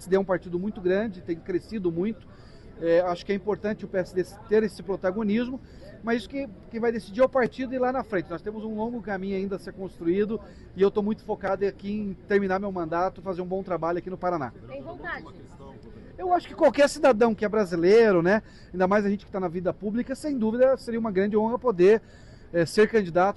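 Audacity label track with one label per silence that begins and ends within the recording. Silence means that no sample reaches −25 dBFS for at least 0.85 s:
15.140000	16.230000	silence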